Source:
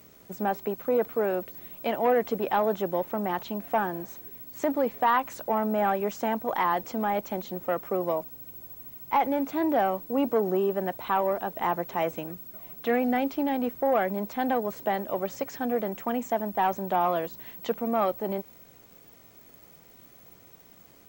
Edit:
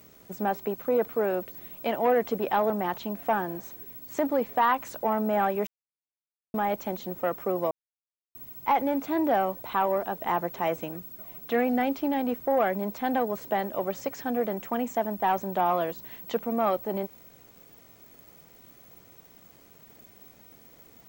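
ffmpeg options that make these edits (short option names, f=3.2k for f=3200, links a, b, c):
-filter_complex "[0:a]asplit=7[a][b][c][d][e][f][g];[a]atrim=end=2.702[h];[b]atrim=start=3.148:end=6.12,asetpts=PTS-STARTPTS,afade=t=out:st=2.968:d=0.004:c=hsin[i];[c]atrim=start=6.12:end=6.99,asetpts=PTS-STARTPTS,volume=0[j];[d]atrim=start=6.99:end=8.16,asetpts=PTS-STARTPTS,afade=t=in:d=0.004:c=hsin,afade=t=out:st=1.166:d=0.004:c=hsin[k];[e]atrim=start=8.16:end=8.8,asetpts=PTS-STARTPTS,volume=0[l];[f]atrim=start=8.8:end=10.022,asetpts=PTS-STARTPTS,afade=t=in:d=0.004:c=hsin[m];[g]atrim=start=10.918[n];[i][j][k][l][m]concat=n=5:v=0:a=1[o];[h][o]acrossfade=d=0.004:c1=hsin:c2=hsin[p];[p][n]acrossfade=d=0.004:c1=hsin:c2=hsin"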